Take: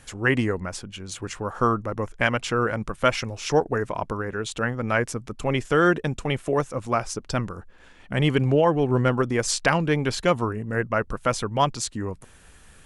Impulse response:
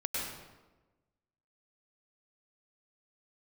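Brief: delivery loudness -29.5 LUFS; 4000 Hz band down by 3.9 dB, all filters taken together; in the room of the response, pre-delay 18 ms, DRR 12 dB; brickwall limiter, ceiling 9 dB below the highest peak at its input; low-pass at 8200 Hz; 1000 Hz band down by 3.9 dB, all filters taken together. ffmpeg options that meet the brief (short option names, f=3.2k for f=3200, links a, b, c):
-filter_complex "[0:a]lowpass=8.2k,equalizer=f=1k:t=o:g=-5,equalizer=f=4k:t=o:g=-5,alimiter=limit=-16.5dB:level=0:latency=1,asplit=2[a][b];[1:a]atrim=start_sample=2205,adelay=18[c];[b][c]afir=irnorm=-1:irlink=0,volume=-17dB[d];[a][d]amix=inputs=2:normalize=0,volume=-0.5dB"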